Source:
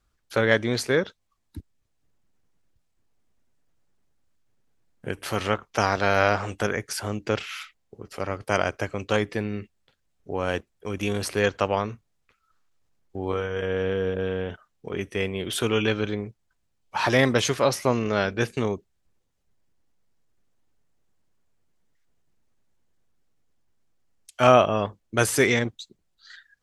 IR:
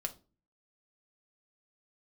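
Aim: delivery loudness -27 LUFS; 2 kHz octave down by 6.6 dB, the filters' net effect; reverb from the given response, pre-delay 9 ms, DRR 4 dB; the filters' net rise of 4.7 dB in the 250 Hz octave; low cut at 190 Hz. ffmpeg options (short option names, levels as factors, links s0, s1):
-filter_complex "[0:a]highpass=190,equalizer=f=250:t=o:g=7.5,equalizer=f=2000:t=o:g=-9,asplit=2[s0][s1];[1:a]atrim=start_sample=2205,adelay=9[s2];[s1][s2]afir=irnorm=-1:irlink=0,volume=0.631[s3];[s0][s3]amix=inputs=2:normalize=0,volume=0.631"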